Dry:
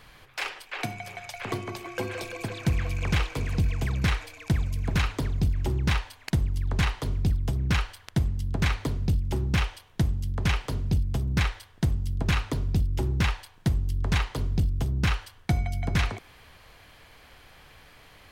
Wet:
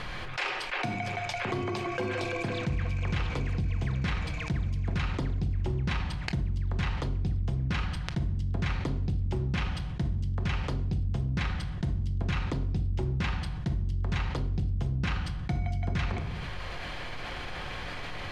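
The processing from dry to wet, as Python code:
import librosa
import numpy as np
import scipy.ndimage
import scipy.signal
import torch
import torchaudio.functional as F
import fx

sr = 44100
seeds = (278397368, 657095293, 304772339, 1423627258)

y = fx.air_absorb(x, sr, metres=92.0)
y = fx.room_shoebox(y, sr, seeds[0], volume_m3=940.0, walls='furnished', distance_m=0.92)
y = fx.env_flatten(y, sr, amount_pct=70)
y = F.gain(torch.from_numpy(y), -8.0).numpy()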